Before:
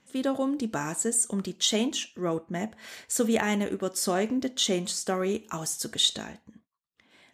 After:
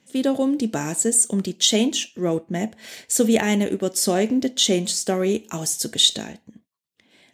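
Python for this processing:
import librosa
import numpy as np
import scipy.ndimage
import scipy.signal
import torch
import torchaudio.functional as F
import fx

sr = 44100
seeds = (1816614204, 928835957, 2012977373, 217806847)

p1 = np.sign(x) * np.maximum(np.abs(x) - 10.0 ** (-48.5 / 20.0), 0.0)
p2 = x + (p1 * 10.0 ** (-8.0 / 20.0))
p3 = scipy.signal.sosfilt(scipy.signal.butter(2, 93.0, 'highpass', fs=sr, output='sos'), p2)
p4 = fx.peak_eq(p3, sr, hz=1200.0, db=-10.0, octaves=1.0)
y = p4 * 10.0 ** (5.0 / 20.0)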